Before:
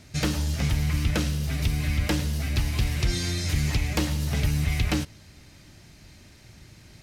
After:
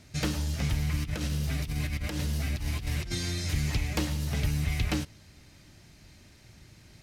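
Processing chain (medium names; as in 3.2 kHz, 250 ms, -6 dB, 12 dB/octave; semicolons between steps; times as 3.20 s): 0.97–3.15 s: compressor with a negative ratio -26 dBFS, ratio -0.5; trim -4 dB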